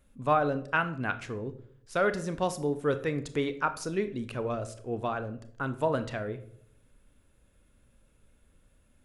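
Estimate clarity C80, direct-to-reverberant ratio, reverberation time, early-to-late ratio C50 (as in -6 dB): 17.5 dB, 10.5 dB, 0.65 s, 14.0 dB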